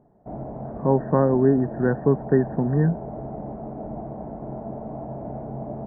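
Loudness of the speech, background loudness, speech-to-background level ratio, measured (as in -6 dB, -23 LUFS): -22.0 LUFS, -34.5 LUFS, 12.5 dB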